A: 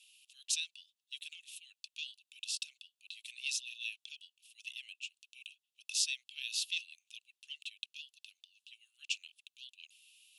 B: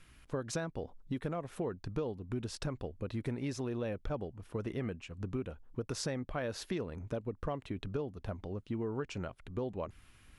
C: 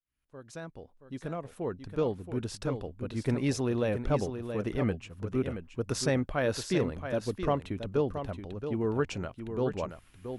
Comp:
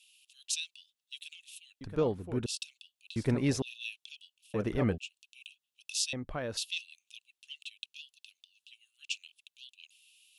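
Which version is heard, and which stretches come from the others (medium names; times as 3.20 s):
A
1.81–2.46 s: from C
3.16–3.62 s: from C
4.54–4.98 s: from C
6.13–6.57 s: from B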